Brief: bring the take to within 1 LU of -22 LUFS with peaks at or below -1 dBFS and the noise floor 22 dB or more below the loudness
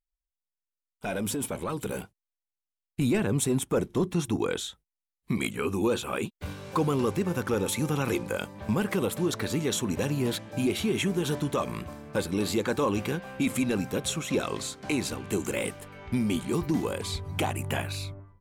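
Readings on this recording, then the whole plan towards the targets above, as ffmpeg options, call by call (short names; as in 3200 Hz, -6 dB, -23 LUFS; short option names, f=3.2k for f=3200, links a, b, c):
loudness -29.5 LUFS; peak -16.5 dBFS; loudness target -22.0 LUFS
-> -af "volume=7.5dB"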